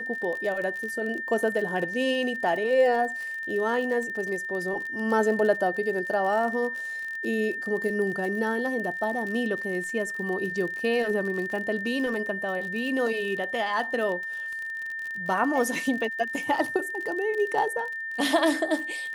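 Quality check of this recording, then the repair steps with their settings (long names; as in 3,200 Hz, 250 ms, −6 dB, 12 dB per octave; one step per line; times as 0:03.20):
surface crackle 44 per second −32 dBFS
whistle 1,800 Hz −31 dBFS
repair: click removal
notch filter 1,800 Hz, Q 30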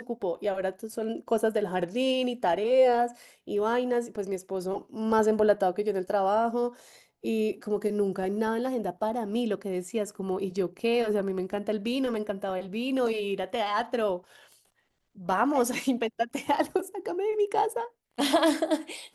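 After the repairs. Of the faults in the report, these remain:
none of them is left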